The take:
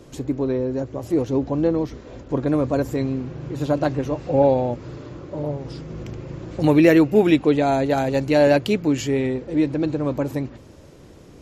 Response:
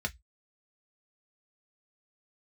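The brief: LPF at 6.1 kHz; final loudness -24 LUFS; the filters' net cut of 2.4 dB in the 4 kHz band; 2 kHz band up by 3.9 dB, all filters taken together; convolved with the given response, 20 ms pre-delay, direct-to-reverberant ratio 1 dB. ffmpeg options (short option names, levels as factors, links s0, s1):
-filter_complex "[0:a]lowpass=6100,equalizer=f=2000:t=o:g=6,equalizer=f=4000:t=o:g=-5,asplit=2[s0][s1];[1:a]atrim=start_sample=2205,adelay=20[s2];[s1][s2]afir=irnorm=-1:irlink=0,volume=0.562[s3];[s0][s3]amix=inputs=2:normalize=0,volume=0.531"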